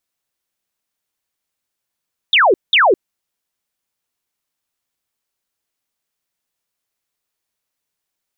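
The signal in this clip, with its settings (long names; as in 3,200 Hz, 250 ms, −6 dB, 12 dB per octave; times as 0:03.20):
repeated falling chirps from 3,800 Hz, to 330 Hz, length 0.21 s sine, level −8 dB, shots 2, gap 0.19 s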